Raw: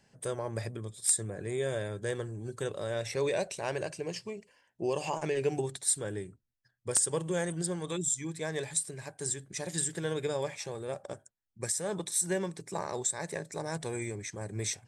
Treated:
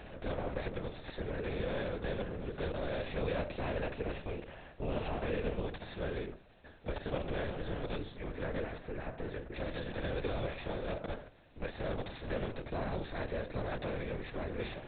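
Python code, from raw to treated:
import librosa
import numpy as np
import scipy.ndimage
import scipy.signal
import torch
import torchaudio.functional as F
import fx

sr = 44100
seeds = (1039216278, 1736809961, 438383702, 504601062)

y = fx.bin_compress(x, sr, power=0.4)
y = fx.lowpass(y, sr, hz=2400.0, slope=12, at=(8.11, 9.54), fade=0.02)
y = fx.lpc_vocoder(y, sr, seeds[0], excitation='whisper', order=8)
y = F.gain(torch.from_numpy(y), -8.5).numpy()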